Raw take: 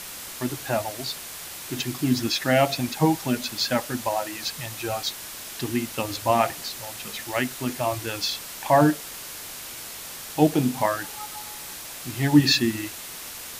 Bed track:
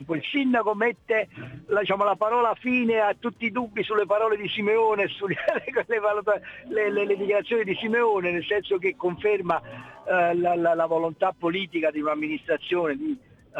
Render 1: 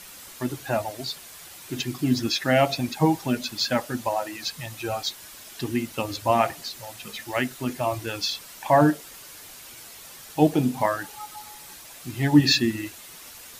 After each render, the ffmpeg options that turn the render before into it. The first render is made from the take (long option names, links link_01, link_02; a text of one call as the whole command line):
ffmpeg -i in.wav -af "afftdn=noise_reduction=8:noise_floor=-38" out.wav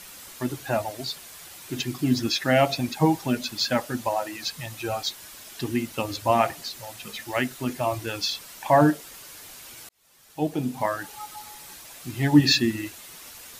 ffmpeg -i in.wav -filter_complex "[0:a]asplit=2[link_01][link_02];[link_01]atrim=end=9.89,asetpts=PTS-STARTPTS,afade=type=out:start_time=9.886:duration=0.004:curve=hsin[link_03];[link_02]atrim=start=9.89,asetpts=PTS-STARTPTS,afade=type=in:duration=1.31[link_04];[link_03][link_04]concat=n=2:v=0:a=1" out.wav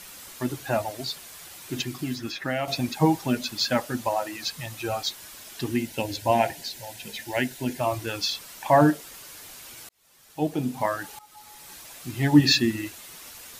ffmpeg -i in.wav -filter_complex "[0:a]asettb=1/sr,asplit=3[link_01][link_02][link_03];[link_01]atrim=end=1.824[link_04];[link_02]atrim=start=1.82:end=2.68,asetpts=PTS-STARTPTS,afade=type=in:duration=0.004:curve=qsin,afade=type=out:start_time=0.856:duration=0.004:curve=qsin,acrossover=split=1100|2300[link_05][link_06][link_07];[link_05]acompressor=threshold=-29dB:ratio=4[link_08];[link_06]acompressor=threshold=-33dB:ratio=4[link_09];[link_07]acompressor=threshold=-40dB:ratio=4[link_10];[link_08][link_09][link_10]amix=inputs=3:normalize=0[link_11];[link_03]atrim=start=2.676[link_12];[link_04][link_11]acrossfade=duration=0.004:curve1=hsin:curve2=qsin[link_13];[link_13][link_12]acrossfade=duration=0.004:curve1=qsin:curve2=hsin,asettb=1/sr,asplit=3[link_14][link_15][link_16];[link_14]atrim=end=5.774[link_17];[link_15]atrim=start=5.77:end=7.8,asetpts=PTS-STARTPTS,afade=type=in:duration=0.004:curve=qsin,afade=type=out:start_time=2.026:duration=0.004:curve=qsin,asuperstop=centerf=1200:order=4:qfactor=3[link_18];[link_16]atrim=start=7.796[link_19];[link_17][link_18]acrossfade=duration=0.004:curve1=hsin:curve2=qsin[link_20];[link_20][link_19]acrossfade=duration=0.004:curve1=qsin:curve2=hsin,asplit=2[link_21][link_22];[link_21]atrim=end=11.19,asetpts=PTS-STARTPTS,afade=type=out:start_time=11.186:duration=0.004:curve=hsin:silence=0.125893[link_23];[link_22]atrim=start=11.19,asetpts=PTS-STARTPTS,afade=type=in:duration=0.6:silence=0.125893[link_24];[link_23][link_24]concat=n=2:v=0:a=1" out.wav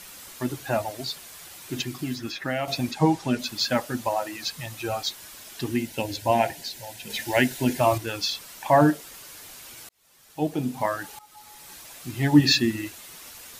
ffmpeg -i in.wav -filter_complex "[0:a]asettb=1/sr,asplit=3[link_01][link_02][link_03];[link_01]atrim=end=2.914[link_04];[link_02]atrim=start=2.91:end=3.39,asetpts=PTS-STARTPTS,afade=type=in:duration=0.004:curve=qsin,afade=type=out:start_time=0.476:duration=0.004:curve=qsin,lowpass=8800[link_05];[link_03]atrim=start=3.386[link_06];[link_04][link_05]acrossfade=duration=0.004:curve1=hsin:curve2=qsin[link_07];[link_07][link_06]acrossfade=duration=0.004:curve1=qsin:curve2=hsin,asettb=1/sr,asplit=3[link_08][link_09][link_10];[link_08]atrim=end=7.104[link_11];[link_09]atrim=start=7.1:end=7.98,asetpts=PTS-STARTPTS,afade=type=in:duration=0.004:curve=qsin,afade=type=out:start_time=0.876:duration=0.004:curve=qsin,acontrast=34[link_12];[link_10]atrim=start=7.976[link_13];[link_11][link_12]acrossfade=duration=0.004:curve1=hsin:curve2=qsin[link_14];[link_14][link_13]acrossfade=duration=0.004:curve1=qsin:curve2=hsin" out.wav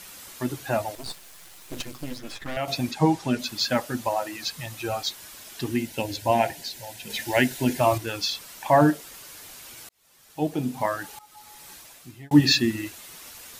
ffmpeg -i in.wav -filter_complex "[0:a]asettb=1/sr,asplit=3[link_01][link_02][link_03];[link_01]atrim=end=0.954[link_04];[link_02]atrim=start=0.95:end=2.57,asetpts=PTS-STARTPTS,afade=type=in:duration=0.004:curve=qsin,afade=type=out:start_time=1.616:duration=0.004:curve=qsin,aeval=exprs='max(val(0),0)':channel_layout=same[link_05];[link_03]atrim=start=2.566[link_06];[link_04][link_05]acrossfade=duration=0.004:curve1=hsin:curve2=qsin[link_07];[link_07][link_06]acrossfade=duration=0.004:curve1=qsin:curve2=hsin,asplit=2[link_08][link_09];[link_08]atrim=end=12.31,asetpts=PTS-STARTPTS,afade=type=out:start_time=11.68:duration=0.63[link_10];[link_09]atrim=start=12.31,asetpts=PTS-STARTPTS,afade=type=in:duration=0.004:curve=hsin[link_11];[link_10][link_11]concat=n=2:v=0:a=1" out.wav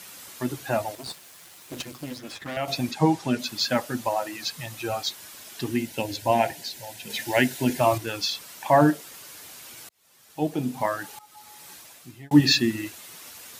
ffmpeg -i in.wav -af "highpass=87" out.wav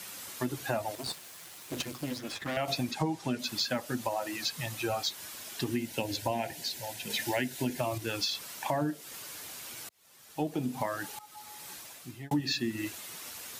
ffmpeg -i in.wav -filter_complex "[0:a]acrossover=split=510|1900[link_01][link_02][link_03];[link_02]alimiter=limit=-18.5dB:level=0:latency=1:release=422[link_04];[link_01][link_04][link_03]amix=inputs=3:normalize=0,acompressor=threshold=-28dB:ratio=6" out.wav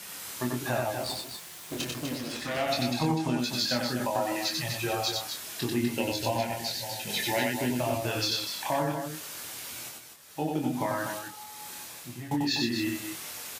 ffmpeg -i in.wav -filter_complex "[0:a]asplit=2[link_01][link_02];[link_02]adelay=25,volume=-4dB[link_03];[link_01][link_03]amix=inputs=2:normalize=0,asplit=2[link_04][link_05];[link_05]aecho=0:1:93.29|247.8:0.708|0.447[link_06];[link_04][link_06]amix=inputs=2:normalize=0" out.wav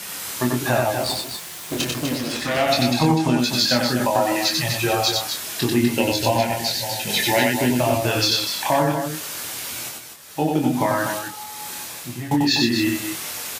ffmpeg -i in.wav -af "volume=9.5dB" out.wav